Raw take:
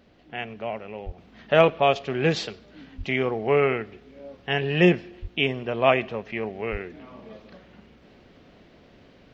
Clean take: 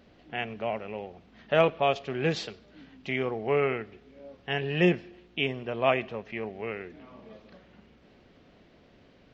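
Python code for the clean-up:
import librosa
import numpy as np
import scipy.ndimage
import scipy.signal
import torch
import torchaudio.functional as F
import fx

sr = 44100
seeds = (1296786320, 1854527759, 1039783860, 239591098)

y = fx.fix_deplosive(x, sr, at_s=(1.05, 2.97, 5.21, 6.71))
y = fx.gain(y, sr, db=fx.steps((0.0, 0.0), (1.18, -5.0)))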